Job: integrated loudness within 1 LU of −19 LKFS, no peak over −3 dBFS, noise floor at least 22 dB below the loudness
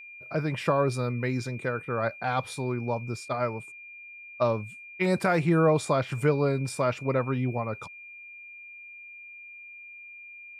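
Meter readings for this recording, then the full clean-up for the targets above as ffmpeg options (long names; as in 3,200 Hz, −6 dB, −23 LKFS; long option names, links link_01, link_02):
interfering tone 2,400 Hz; level of the tone −43 dBFS; integrated loudness −28.0 LKFS; sample peak −12.5 dBFS; target loudness −19.0 LKFS
→ -af "bandreject=frequency=2400:width=30"
-af "volume=9dB"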